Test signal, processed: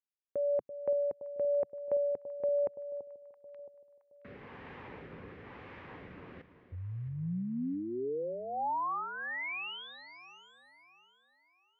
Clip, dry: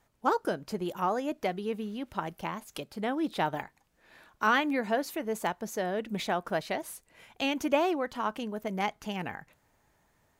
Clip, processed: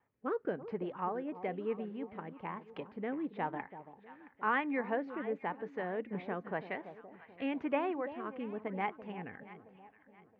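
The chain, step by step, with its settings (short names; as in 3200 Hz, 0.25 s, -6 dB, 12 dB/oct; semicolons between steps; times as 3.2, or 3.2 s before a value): rotary speaker horn 1 Hz; speaker cabinet 130–2100 Hz, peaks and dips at 140 Hz -5 dB, 210 Hz -5 dB, 330 Hz -5 dB, 640 Hz -8 dB, 1400 Hz -6 dB; echo with dull and thin repeats by turns 0.335 s, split 900 Hz, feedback 60%, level -11.5 dB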